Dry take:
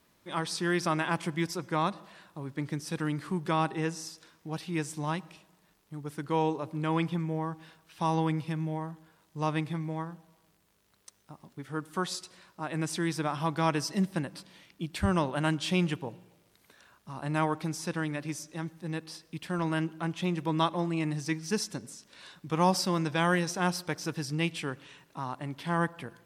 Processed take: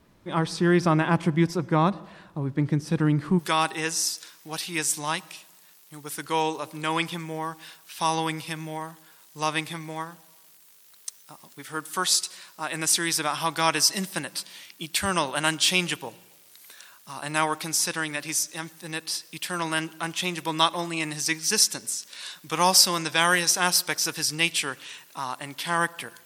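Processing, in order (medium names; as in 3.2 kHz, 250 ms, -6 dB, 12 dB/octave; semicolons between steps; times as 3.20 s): tilt EQ -2 dB/octave, from 3.38 s +4 dB/octave; trim +5.5 dB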